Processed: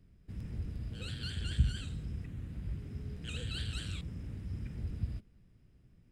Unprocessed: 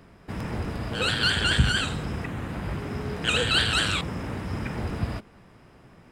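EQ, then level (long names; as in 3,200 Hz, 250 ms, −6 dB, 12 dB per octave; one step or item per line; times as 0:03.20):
guitar amp tone stack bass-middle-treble 10-0-1
+3.0 dB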